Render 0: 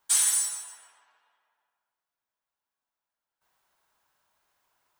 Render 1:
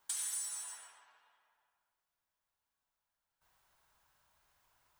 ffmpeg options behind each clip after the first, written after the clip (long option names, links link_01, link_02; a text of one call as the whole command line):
ffmpeg -i in.wav -af "asubboost=boost=3.5:cutoff=150,alimiter=limit=-20.5dB:level=0:latency=1:release=243,acompressor=threshold=-40dB:ratio=2.5" out.wav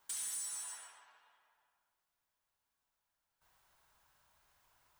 ffmpeg -i in.wav -af "asoftclip=type=tanh:threshold=-37.5dB,volume=1.5dB" out.wav